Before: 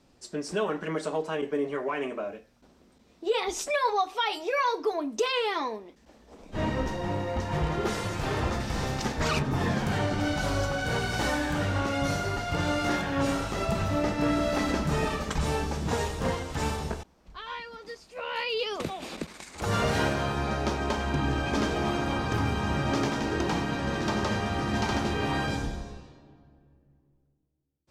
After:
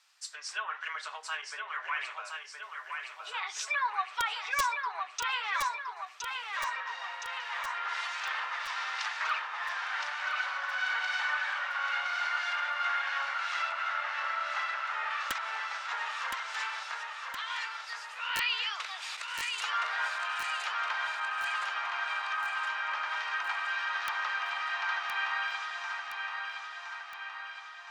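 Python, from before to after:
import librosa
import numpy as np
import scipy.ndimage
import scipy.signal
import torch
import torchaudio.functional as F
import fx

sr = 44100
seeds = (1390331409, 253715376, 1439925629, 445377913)

p1 = fx.env_lowpass_down(x, sr, base_hz=1700.0, full_db=-23.0)
p2 = scipy.signal.sosfilt(scipy.signal.cheby2(4, 80, 200.0, 'highpass', fs=sr, output='sos'), p1)
p3 = (np.mod(10.0 ** (23.5 / 20.0) * p2 + 1.0, 2.0) - 1.0) / 10.0 ** (23.5 / 20.0)
p4 = p3 + fx.echo_feedback(p3, sr, ms=1017, feedback_pct=59, wet_db=-5.0, dry=0)
y = p4 * librosa.db_to_amplitude(3.5)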